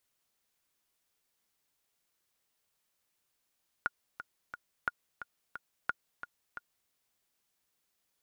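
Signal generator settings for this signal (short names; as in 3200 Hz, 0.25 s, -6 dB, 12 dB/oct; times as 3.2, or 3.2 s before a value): metronome 177 bpm, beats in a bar 3, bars 3, 1430 Hz, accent 11.5 dB -16.5 dBFS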